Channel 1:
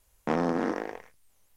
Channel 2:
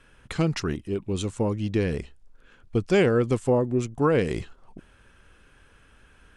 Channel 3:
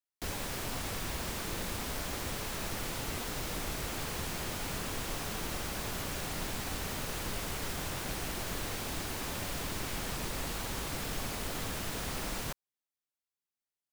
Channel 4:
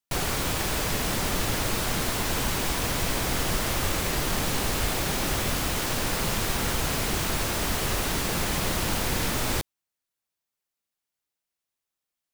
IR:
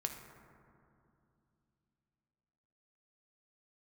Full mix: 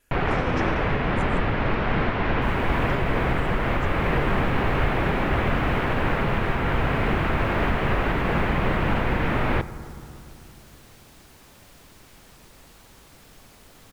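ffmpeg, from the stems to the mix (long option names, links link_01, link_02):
-filter_complex "[0:a]asplit=2[link_01][link_02];[link_02]adelay=7.5,afreqshift=-2.5[link_03];[link_01][link_03]amix=inputs=2:normalize=1,volume=2.5dB[link_04];[1:a]asplit=2[link_05][link_06];[link_06]afreqshift=-0.92[link_07];[link_05][link_07]amix=inputs=2:normalize=1,volume=-10.5dB[link_08];[2:a]adelay=2200,volume=-13.5dB[link_09];[3:a]acontrast=33,lowpass=frequency=2400:width=0.5412,lowpass=frequency=2400:width=1.3066,volume=-1.5dB,asplit=2[link_10][link_11];[link_11]volume=-6dB[link_12];[4:a]atrim=start_sample=2205[link_13];[link_12][link_13]afir=irnorm=-1:irlink=0[link_14];[link_04][link_08][link_09][link_10][link_14]amix=inputs=5:normalize=0,alimiter=limit=-12dB:level=0:latency=1:release=315"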